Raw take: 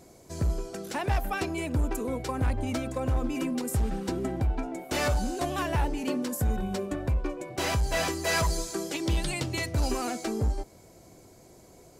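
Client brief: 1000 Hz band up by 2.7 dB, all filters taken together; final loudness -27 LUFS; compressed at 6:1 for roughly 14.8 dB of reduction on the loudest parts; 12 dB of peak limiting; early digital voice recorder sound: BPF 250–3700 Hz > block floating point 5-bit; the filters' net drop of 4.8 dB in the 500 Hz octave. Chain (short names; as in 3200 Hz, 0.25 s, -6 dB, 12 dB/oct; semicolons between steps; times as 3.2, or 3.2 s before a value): bell 500 Hz -8.5 dB; bell 1000 Hz +6.5 dB; compressor 6:1, threshold -39 dBFS; limiter -38.5 dBFS; BPF 250–3700 Hz; block floating point 5-bit; gain +23 dB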